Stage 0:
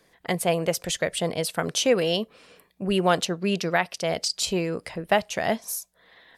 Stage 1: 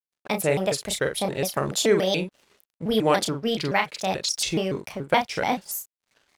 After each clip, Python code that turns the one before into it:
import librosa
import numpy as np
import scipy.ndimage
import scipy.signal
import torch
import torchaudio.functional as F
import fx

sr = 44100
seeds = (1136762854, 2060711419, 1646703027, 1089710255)

y = np.sign(x) * np.maximum(np.abs(x) - 10.0 ** (-50.5 / 20.0), 0.0)
y = fx.doubler(y, sr, ms=37.0, db=-6)
y = fx.vibrato_shape(y, sr, shape='square', rate_hz=3.5, depth_cents=250.0)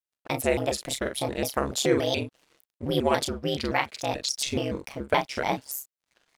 y = x * np.sin(2.0 * np.pi * 69.0 * np.arange(len(x)) / sr)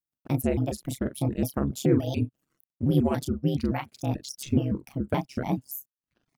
y = fx.dereverb_blind(x, sr, rt60_s=0.65)
y = fx.graphic_eq(y, sr, hz=(125, 250, 500, 1000, 2000, 4000, 8000), db=(8, 6, -7, -7, -10, -11, -9))
y = F.gain(torch.from_numpy(y), 2.0).numpy()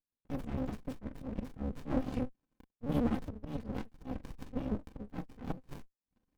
y = x + 0.75 * np.pad(x, (int(3.9 * sr / 1000.0), 0))[:len(x)]
y = fx.auto_swell(y, sr, attack_ms=115.0)
y = fx.running_max(y, sr, window=65)
y = F.gain(torch.from_numpy(y), -6.5).numpy()